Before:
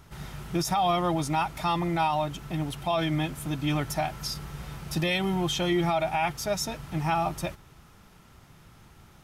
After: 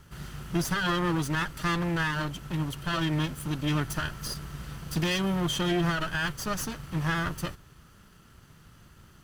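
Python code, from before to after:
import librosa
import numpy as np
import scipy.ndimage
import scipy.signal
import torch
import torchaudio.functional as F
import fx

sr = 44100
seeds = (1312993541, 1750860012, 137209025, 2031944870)

y = fx.lower_of_two(x, sr, delay_ms=0.65)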